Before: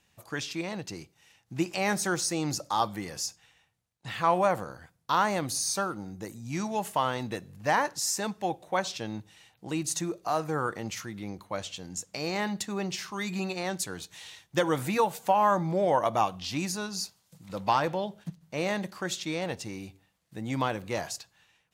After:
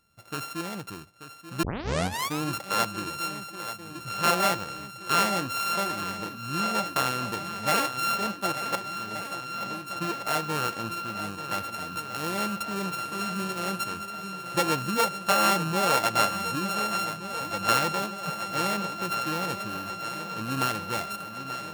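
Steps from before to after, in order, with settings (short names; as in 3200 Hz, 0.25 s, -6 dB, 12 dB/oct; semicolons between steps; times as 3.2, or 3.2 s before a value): sample sorter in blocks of 32 samples; 8.75–10.01 compressor 2.5:1, threshold -43 dBFS, peak gain reduction 13.5 dB; swung echo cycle 1.473 s, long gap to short 1.5:1, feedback 65%, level -12 dB; 1.63 tape start 0.79 s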